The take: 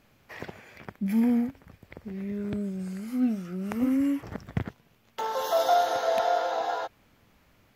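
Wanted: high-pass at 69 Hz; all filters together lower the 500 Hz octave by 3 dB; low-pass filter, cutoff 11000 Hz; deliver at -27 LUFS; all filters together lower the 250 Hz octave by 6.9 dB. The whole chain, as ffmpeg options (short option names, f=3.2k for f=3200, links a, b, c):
-af "highpass=69,lowpass=11k,equalizer=f=250:t=o:g=-7,equalizer=f=500:t=o:g=-3.5,volume=5dB"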